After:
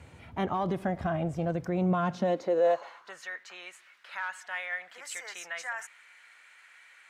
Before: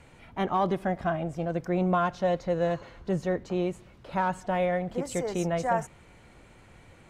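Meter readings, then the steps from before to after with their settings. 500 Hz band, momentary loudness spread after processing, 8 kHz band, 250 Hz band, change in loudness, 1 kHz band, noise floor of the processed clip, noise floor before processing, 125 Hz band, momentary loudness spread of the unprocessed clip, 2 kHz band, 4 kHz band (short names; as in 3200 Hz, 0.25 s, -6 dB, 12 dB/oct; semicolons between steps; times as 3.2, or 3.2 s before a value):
-2.5 dB, 16 LU, -1.0 dB, -3.5 dB, -2.5 dB, -5.5 dB, -57 dBFS, -55 dBFS, -2.5 dB, 7 LU, +1.5 dB, -0.5 dB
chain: limiter -22 dBFS, peak gain reduction 7 dB; high-pass sweep 78 Hz -> 1700 Hz, 1.76–3.23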